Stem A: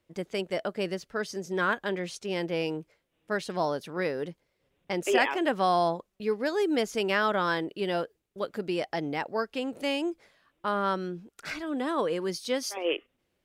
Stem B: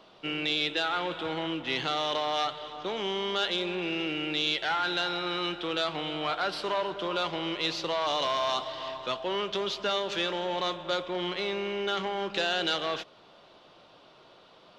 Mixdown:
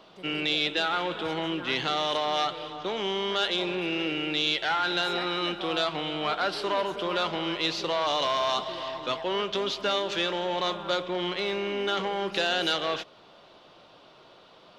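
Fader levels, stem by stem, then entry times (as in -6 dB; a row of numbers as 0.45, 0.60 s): -14.5, +2.0 dB; 0.00, 0.00 s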